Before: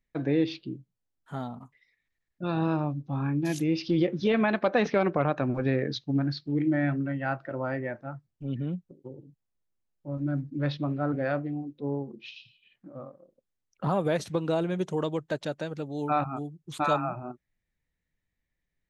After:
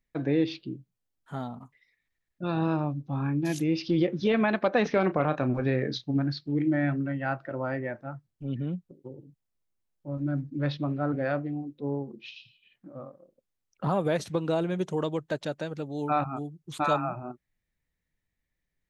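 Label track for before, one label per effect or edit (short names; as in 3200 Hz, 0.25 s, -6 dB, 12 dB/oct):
4.870000	6.160000	doubler 32 ms -11 dB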